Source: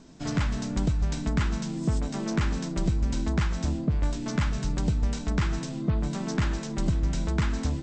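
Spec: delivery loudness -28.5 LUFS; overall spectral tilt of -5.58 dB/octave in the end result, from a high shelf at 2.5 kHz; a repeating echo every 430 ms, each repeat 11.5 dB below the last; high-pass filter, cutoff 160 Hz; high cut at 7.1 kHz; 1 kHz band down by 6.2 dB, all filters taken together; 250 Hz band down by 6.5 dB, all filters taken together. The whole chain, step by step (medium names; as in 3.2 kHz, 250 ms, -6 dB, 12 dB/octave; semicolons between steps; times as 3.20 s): high-pass 160 Hz; low-pass 7.1 kHz; peaking EQ 250 Hz -7 dB; peaking EQ 1 kHz -7 dB; treble shelf 2.5 kHz -4 dB; feedback delay 430 ms, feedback 27%, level -11.5 dB; trim +8 dB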